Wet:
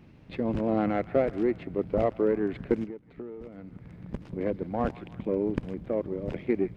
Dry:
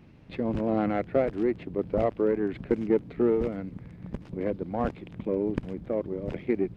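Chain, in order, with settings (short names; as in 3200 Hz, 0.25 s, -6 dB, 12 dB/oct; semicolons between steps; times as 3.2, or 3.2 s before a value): band-limited delay 0.158 s, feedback 56%, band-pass 1600 Hz, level -17 dB; 2.84–4.09 compressor 6:1, threshold -39 dBFS, peak gain reduction 19.5 dB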